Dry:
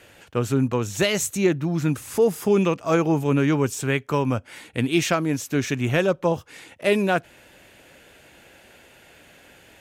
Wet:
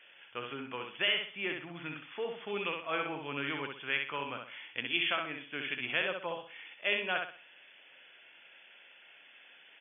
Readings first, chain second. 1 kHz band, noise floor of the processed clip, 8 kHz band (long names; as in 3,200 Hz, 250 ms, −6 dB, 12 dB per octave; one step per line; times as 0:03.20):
−10.5 dB, −59 dBFS, below −40 dB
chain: first difference
repeating echo 64 ms, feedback 32%, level −4.5 dB
brick-wall band-pass 110–3,500 Hz
level +5 dB